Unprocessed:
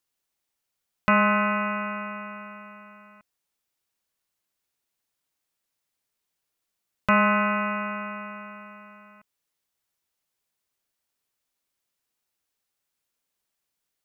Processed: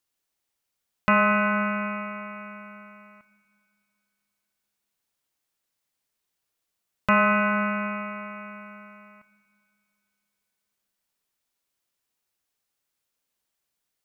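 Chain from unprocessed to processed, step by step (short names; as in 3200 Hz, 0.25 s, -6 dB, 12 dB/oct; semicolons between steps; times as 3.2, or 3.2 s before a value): Schroeder reverb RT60 2.7 s, combs from 26 ms, DRR 10 dB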